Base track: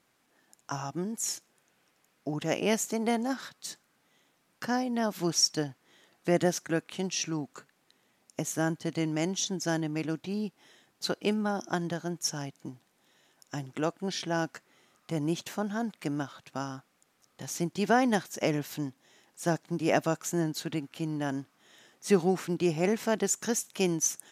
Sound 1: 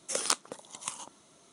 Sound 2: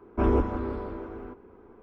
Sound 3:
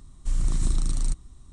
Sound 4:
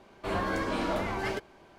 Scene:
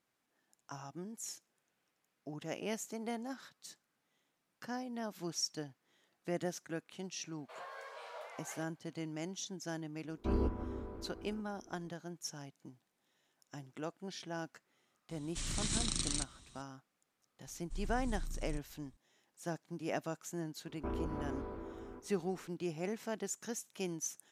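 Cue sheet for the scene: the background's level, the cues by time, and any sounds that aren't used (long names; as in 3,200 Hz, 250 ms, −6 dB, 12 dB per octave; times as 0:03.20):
base track −12 dB
0:07.25: mix in 4 −16 dB + Butterworth high-pass 460 Hz 72 dB per octave
0:10.07: mix in 2 −15 dB + low-shelf EQ 380 Hz +6.5 dB
0:15.10: mix in 3 −3.5 dB + meter weighting curve D
0:17.45: mix in 3 −17.5 dB + downsampling to 22,050 Hz
0:20.66: mix in 2 −9 dB + downward compressor 4 to 1, threshold −26 dBFS
not used: 1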